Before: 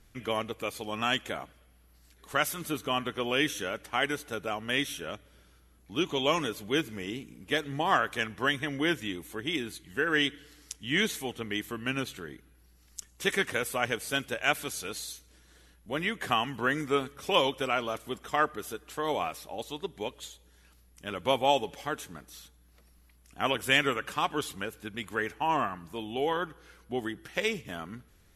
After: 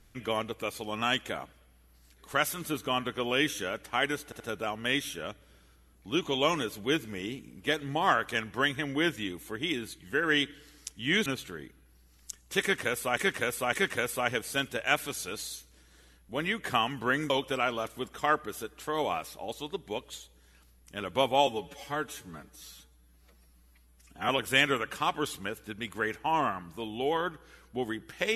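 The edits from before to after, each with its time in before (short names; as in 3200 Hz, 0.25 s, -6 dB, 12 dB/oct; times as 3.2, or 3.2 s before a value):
4.24 stutter 0.08 s, 3 plays
11.1–11.95 cut
13.3–13.86 loop, 3 plays
16.87–17.4 cut
21.57–23.45 stretch 1.5×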